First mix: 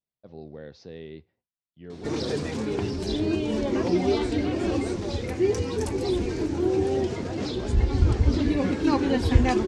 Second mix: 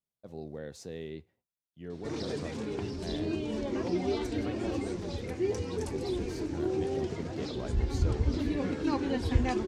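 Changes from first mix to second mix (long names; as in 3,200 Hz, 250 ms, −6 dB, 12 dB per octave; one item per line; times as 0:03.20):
speech: remove Butterworth low-pass 5,400 Hz 48 dB per octave
background −7.5 dB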